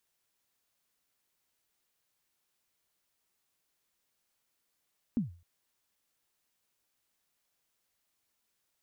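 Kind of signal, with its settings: kick drum length 0.26 s, from 260 Hz, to 86 Hz, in 0.135 s, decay 0.38 s, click off, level -23 dB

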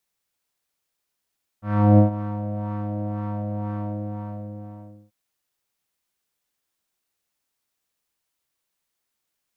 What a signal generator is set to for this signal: synth patch with filter wobble G#3, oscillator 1 triangle, oscillator 2 saw, interval +7 st, oscillator 2 level -14.5 dB, sub -0.5 dB, noise -11.5 dB, filter lowpass, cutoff 590 Hz, Q 2.1, filter envelope 1 oct, filter decay 0.24 s, filter sustain 45%, attack 0.36 s, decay 0.12 s, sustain -16 dB, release 1.40 s, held 2.09 s, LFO 2 Hz, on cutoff 0.4 oct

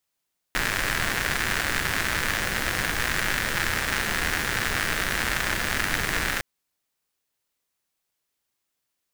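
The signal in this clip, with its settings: rain from filtered ticks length 5.86 s, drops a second 160, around 1700 Hz, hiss -2 dB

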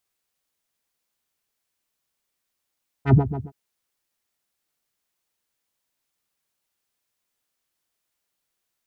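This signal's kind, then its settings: synth patch with filter wobble C#3, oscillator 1 square, oscillator 2 square, interval +12 st, oscillator 2 level -7.5 dB, filter lowpass, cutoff 240 Hz, Q 2.1, filter envelope 1.5 oct, filter decay 0.16 s, filter sustain 5%, attack 83 ms, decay 0.11 s, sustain -15 dB, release 0.16 s, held 0.31 s, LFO 7.4 Hz, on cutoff 1.9 oct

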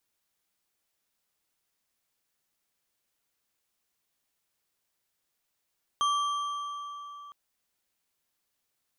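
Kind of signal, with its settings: metal hit bar, length 1.31 s, lowest mode 1160 Hz, modes 4, decay 3.70 s, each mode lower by 8 dB, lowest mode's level -23 dB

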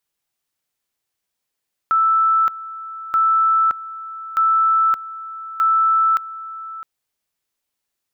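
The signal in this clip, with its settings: two-level tone 1320 Hz -12.5 dBFS, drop 16.5 dB, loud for 0.57 s, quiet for 0.66 s, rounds 4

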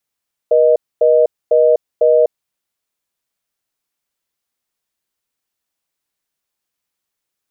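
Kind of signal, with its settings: call progress tone reorder tone, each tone -10.5 dBFS 1.92 s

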